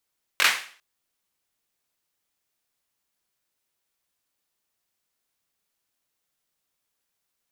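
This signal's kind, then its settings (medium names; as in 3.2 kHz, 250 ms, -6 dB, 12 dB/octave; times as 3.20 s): hand clap length 0.40 s, bursts 3, apart 21 ms, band 2 kHz, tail 0.44 s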